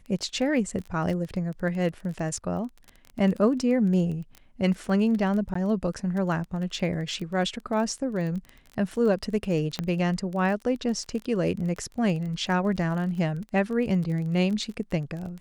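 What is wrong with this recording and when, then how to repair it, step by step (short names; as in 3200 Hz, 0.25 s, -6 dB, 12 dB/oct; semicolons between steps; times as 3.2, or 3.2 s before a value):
crackle 21/s -32 dBFS
5.54–5.55 gap 14 ms
9.79 pop -14 dBFS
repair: de-click; interpolate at 5.54, 14 ms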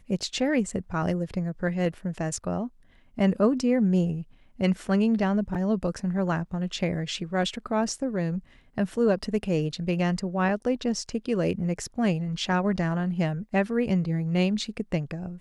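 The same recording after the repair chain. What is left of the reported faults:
9.79 pop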